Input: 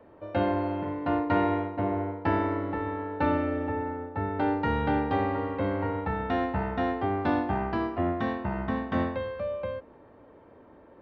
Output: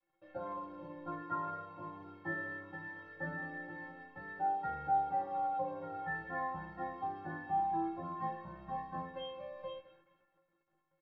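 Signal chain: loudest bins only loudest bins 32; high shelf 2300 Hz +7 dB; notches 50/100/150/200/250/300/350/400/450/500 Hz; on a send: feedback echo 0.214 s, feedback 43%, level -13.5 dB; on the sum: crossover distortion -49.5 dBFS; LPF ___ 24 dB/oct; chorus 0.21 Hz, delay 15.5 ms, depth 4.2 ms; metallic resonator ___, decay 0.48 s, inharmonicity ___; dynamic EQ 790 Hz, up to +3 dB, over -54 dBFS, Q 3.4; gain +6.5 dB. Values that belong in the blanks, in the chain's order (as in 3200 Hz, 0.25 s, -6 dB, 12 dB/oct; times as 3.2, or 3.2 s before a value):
3600 Hz, 160 Hz, 0.03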